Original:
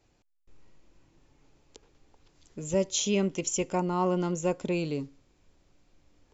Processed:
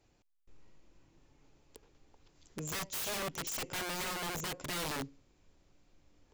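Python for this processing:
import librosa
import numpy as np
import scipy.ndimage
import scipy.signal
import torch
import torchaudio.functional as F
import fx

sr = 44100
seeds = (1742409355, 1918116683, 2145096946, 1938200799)

p1 = 10.0 ** (-25.0 / 20.0) * np.tanh(x / 10.0 ** (-25.0 / 20.0))
p2 = x + F.gain(torch.from_numpy(p1), -3.5).numpy()
p3 = fx.peak_eq(p2, sr, hz=390.0, db=-11.0, octaves=0.77, at=(2.79, 3.34))
p4 = (np.mod(10.0 ** (25.5 / 20.0) * p3 + 1.0, 2.0) - 1.0) / 10.0 ** (25.5 / 20.0)
y = F.gain(torch.from_numpy(p4), -7.0).numpy()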